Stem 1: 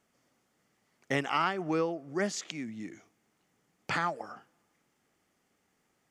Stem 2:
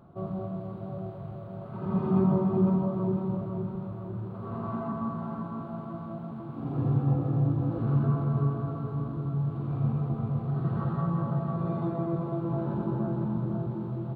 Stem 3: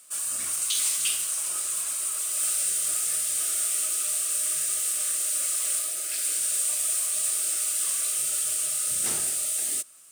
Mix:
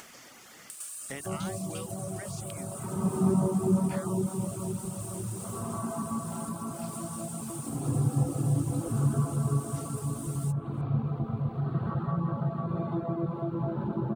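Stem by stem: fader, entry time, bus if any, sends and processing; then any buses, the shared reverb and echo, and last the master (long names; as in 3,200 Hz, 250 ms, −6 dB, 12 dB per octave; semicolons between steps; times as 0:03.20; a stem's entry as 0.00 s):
−14.5 dB, 0.00 s, no send, no processing
0.0 dB, 1.10 s, no send, no processing
−20.0 dB, 0.70 s, no send, no processing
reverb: not used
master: reverb reduction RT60 0.6 s; upward compression, threshold −32 dBFS; one half of a high-frequency compander encoder only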